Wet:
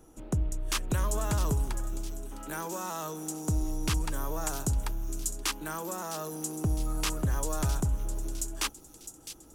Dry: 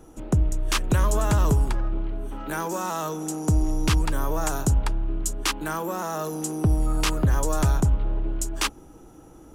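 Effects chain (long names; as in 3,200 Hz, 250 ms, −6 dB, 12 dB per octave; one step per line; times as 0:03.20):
high-shelf EQ 5,300 Hz +6.5 dB
on a send: delay with a high-pass on its return 658 ms, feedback 53%, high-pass 4,300 Hz, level −8.5 dB
on the sum: level −8 dB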